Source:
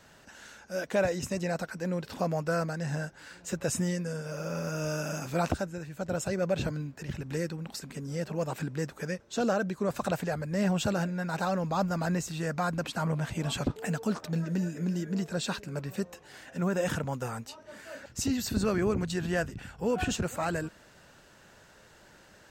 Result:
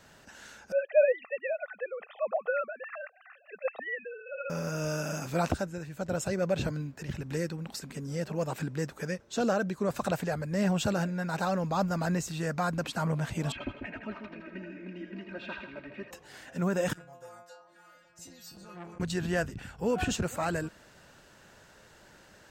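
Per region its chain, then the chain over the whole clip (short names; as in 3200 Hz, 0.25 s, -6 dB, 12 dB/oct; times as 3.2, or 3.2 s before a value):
0.72–4.5 sine-wave speech + HPF 620 Hz + comb 1.6 ms, depth 73%
13.52–16.11 ladder low-pass 2700 Hz, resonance 60% + comb 3.2 ms, depth 95% + split-band echo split 650 Hz, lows 0.143 s, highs 81 ms, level -6 dB
16.93–19 metallic resonator 170 Hz, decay 0.46 s, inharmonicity 0.002 + delay with a stepping band-pass 0.272 s, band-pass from 740 Hz, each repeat 0.7 oct, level -2 dB + core saturation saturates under 1100 Hz
whole clip: dry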